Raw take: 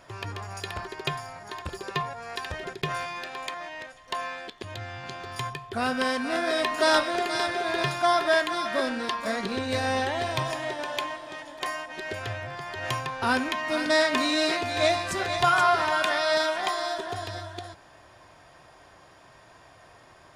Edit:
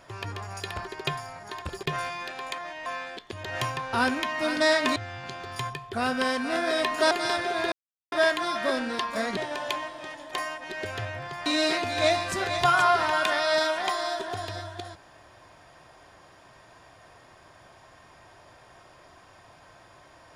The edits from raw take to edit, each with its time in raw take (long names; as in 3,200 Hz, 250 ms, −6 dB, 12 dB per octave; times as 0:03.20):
0:01.83–0:02.79: remove
0:03.82–0:04.17: remove
0:06.91–0:07.21: remove
0:07.82–0:08.22: silence
0:09.47–0:10.65: remove
0:12.74–0:14.25: move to 0:04.76